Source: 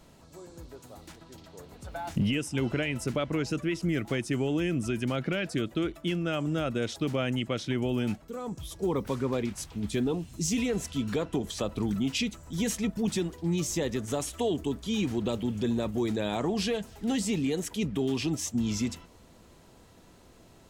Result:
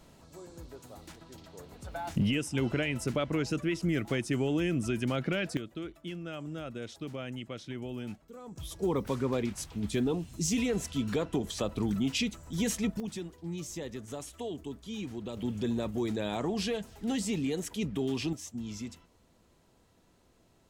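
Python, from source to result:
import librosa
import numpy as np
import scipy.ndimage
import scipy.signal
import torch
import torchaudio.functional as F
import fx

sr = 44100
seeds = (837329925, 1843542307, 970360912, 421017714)

y = fx.gain(x, sr, db=fx.steps((0.0, -1.0), (5.57, -10.0), (8.56, -1.0), (13.0, -9.5), (15.37, -3.0), (18.33, -10.0)))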